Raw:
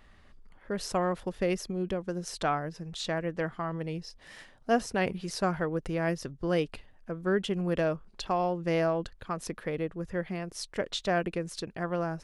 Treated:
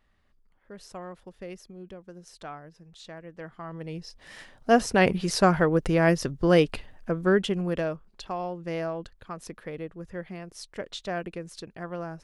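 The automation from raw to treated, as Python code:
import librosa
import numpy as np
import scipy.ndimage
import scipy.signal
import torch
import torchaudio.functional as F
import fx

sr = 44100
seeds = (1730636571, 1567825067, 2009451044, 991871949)

y = fx.gain(x, sr, db=fx.line((3.27, -11.5), (4.02, 0.5), (5.06, 8.5), (7.11, 8.5), (8.09, -4.0)))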